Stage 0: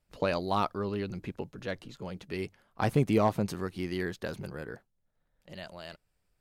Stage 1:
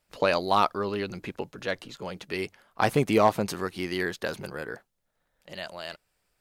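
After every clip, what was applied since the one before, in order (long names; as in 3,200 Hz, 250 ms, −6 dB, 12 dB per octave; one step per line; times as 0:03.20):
low-shelf EQ 280 Hz −12 dB
level +8 dB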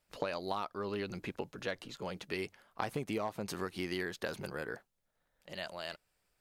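downward compressor 16 to 1, threshold −28 dBFS, peak gain reduction 14 dB
level −4 dB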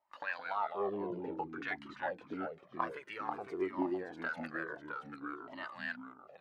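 LFO wah 0.73 Hz 290–1,800 Hz, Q 4.2
delay with pitch and tempo change per echo 144 ms, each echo −2 semitones, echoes 3, each echo −6 dB
flanger whose copies keep moving one way falling 0.54 Hz
level +13.5 dB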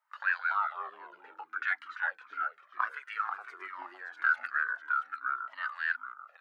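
high-pass with resonance 1,400 Hz, resonance Q 5.3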